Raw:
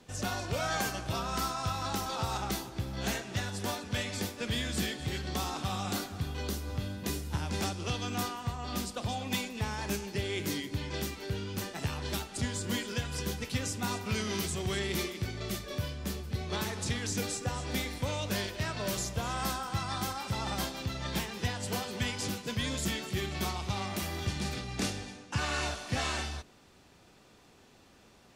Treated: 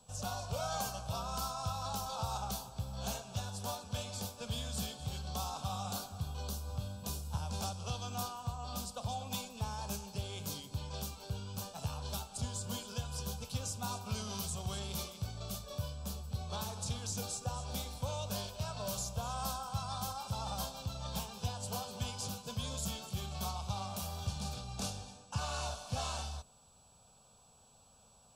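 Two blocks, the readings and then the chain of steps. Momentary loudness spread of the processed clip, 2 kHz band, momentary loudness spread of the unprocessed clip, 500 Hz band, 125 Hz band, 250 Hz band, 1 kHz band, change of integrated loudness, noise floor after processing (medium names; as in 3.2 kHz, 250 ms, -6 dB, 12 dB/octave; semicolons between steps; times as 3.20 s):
4 LU, -13.5 dB, 4 LU, -7.0 dB, -4.0 dB, -9.0 dB, -3.5 dB, -5.5 dB, -63 dBFS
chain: whistle 7.8 kHz -62 dBFS; static phaser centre 800 Hz, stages 4; trim -2.5 dB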